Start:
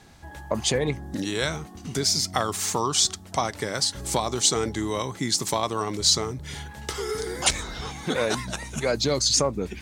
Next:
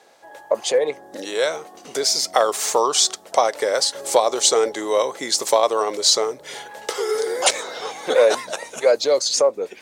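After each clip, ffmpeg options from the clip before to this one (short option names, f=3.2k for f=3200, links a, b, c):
-af "dynaudnorm=f=360:g=9:m=7dB,highpass=f=520:t=q:w=3.4,volume=-1dB"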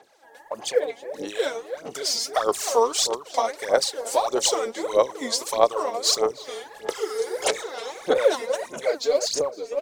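-filter_complex "[0:a]asplit=2[a][b];[b]adelay=312,lowpass=f=930:p=1,volume=-7.5dB,asplit=2[c][d];[d]adelay=312,lowpass=f=930:p=1,volume=0.39,asplit=2[e][f];[f]adelay=312,lowpass=f=930:p=1,volume=0.39,asplit=2[g][h];[h]adelay=312,lowpass=f=930:p=1,volume=0.39[i];[a][c][e][g][i]amix=inputs=5:normalize=0,aphaser=in_gain=1:out_gain=1:delay=4.4:decay=0.77:speed=1.6:type=sinusoidal,volume=-9.5dB"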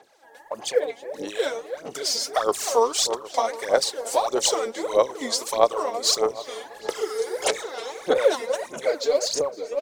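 -filter_complex "[0:a]asplit=2[a][b];[b]adelay=758,volume=-18dB,highshelf=f=4k:g=-17.1[c];[a][c]amix=inputs=2:normalize=0"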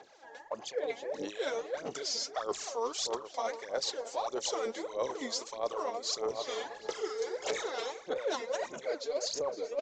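-af "areverse,acompressor=threshold=-32dB:ratio=6,areverse,aresample=16000,aresample=44100"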